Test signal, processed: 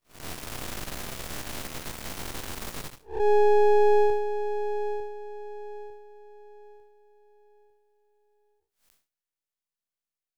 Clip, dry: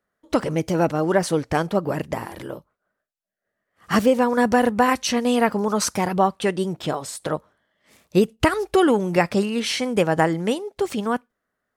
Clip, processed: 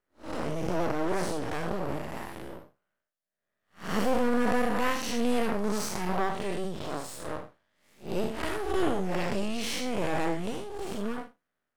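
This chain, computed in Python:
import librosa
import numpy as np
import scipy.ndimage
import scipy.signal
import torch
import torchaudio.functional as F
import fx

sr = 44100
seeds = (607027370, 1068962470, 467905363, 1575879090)

y = fx.spec_blur(x, sr, span_ms=162.0)
y = np.maximum(y, 0.0)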